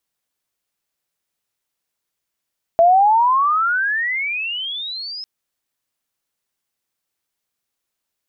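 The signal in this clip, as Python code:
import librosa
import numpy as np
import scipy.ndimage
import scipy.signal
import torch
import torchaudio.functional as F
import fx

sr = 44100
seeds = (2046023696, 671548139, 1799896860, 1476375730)

y = fx.chirp(sr, length_s=2.45, from_hz=660.0, to_hz=5200.0, law='logarithmic', from_db=-8.0, to_db=-27.5)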